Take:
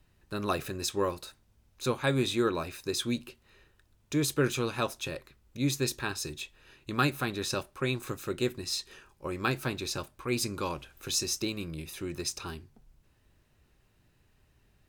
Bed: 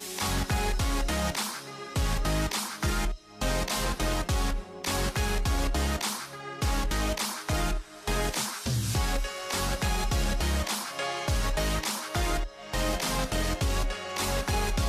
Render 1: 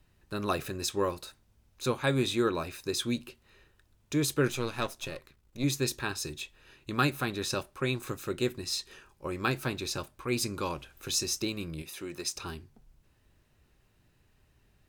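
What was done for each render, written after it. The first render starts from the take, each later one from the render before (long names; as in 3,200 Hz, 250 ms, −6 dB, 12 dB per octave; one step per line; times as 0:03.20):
0:04.48–0:05.64: gain on one half-wave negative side −7 dB
0:11.82–0:12.36: high-pass filter 320 Hz 6 dB per octave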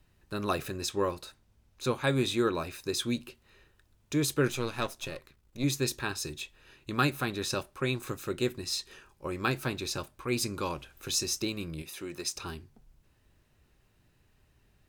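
0:00.79–0:01.91: high-shelf EQ 7,900 Hz −4.5 dB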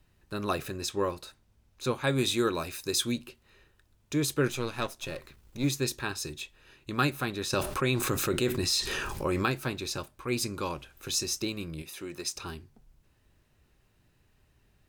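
0:02.18–0:03.12: high-shelf EQ 4,000 Hz +8 dB
0:05.08–0:05.69: mu-law and A-law mismatch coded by mu
0:07.53–0:09.46: envelope flattener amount 70%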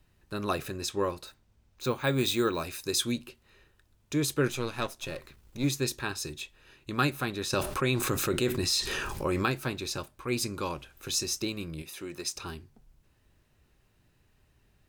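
0:01.26–0:02.61: bad sample-rate conversion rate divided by 2×, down filtered, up hold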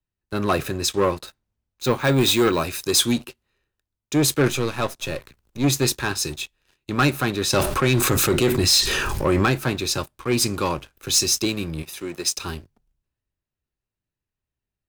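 leveller curve on the samples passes 3
multiband upward and downward expander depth 40%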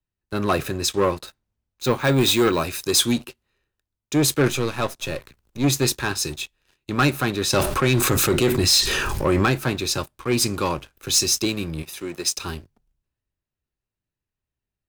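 no processing that can be heard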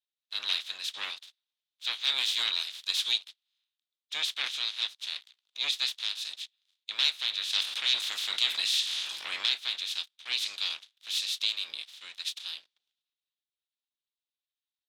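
ceiling on every frequency bin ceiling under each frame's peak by 25 dB
resonant band-pass 3,600 Hz, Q 4.7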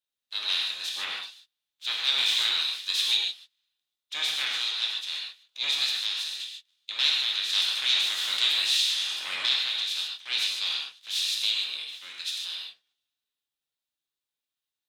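reverb whose tail is shaped and stops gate 170 ms flat, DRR −1.5 dB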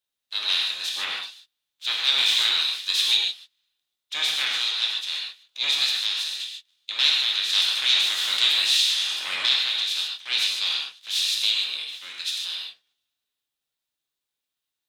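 level +4 dB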